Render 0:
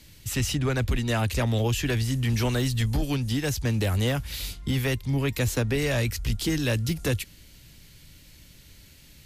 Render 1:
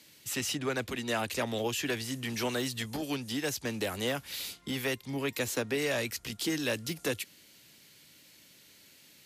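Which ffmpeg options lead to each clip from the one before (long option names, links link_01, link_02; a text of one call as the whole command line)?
ffmpeg -i in.wav -af "highpass=270,volume=-3dB" out.wav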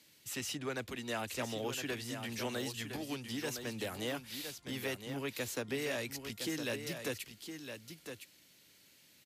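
ffmpeg -i in.wav -af "aecho=1:1:1012:0.398,volume=-6.5dB" out.wav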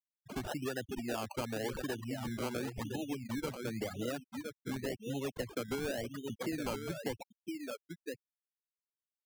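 ffmpeg -i in.wav -af "afftfilt=real='re*gte(hypot(re,im),0.0224)':imag='im*gte(hypot(re,im),0.0224)':win_size=1024:overlap=0.75,acrusher=samples=19:mix=1:aa=0.000001:lfo=1:lforange=11.4:lforate=0.92,acompressor=threshold=-45dB:ratio=2.5,volume=8dB" out.wav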